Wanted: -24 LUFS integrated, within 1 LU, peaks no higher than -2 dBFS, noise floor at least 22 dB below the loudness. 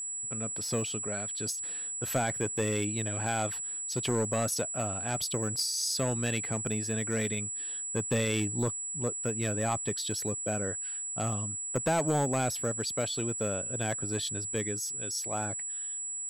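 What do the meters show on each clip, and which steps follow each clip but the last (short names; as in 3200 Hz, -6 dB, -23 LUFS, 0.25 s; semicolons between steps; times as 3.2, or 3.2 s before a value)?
clipped 0.8%; flat tops at -22.0 dBFS; steady tone 7800 Hz; tone level -34 dBFS; loudness -31.0 LUFS; peak -22.0 dBFS; loudness target -24.0 LUFS
-> clip repair -22 dBFS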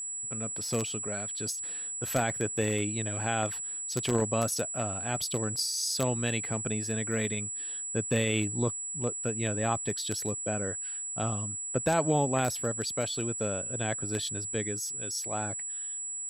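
clipped 0.0%; steady tone 7800 Hz; tone level -34 dBFS
-> notch 7800 Hz, Q 30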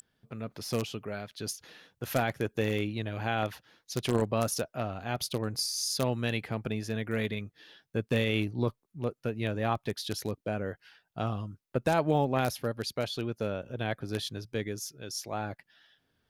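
steady tone none; loudness -32.5 LUFS; peak -12.5 dBFS; loudness target -24.0 LUFS
-> gain +8.5 dB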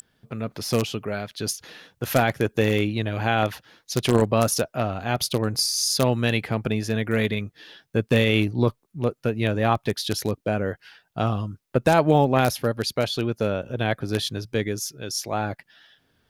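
loudness -24.0 LUFS; peak -4.0 dBFS; noise floor -71 dBFS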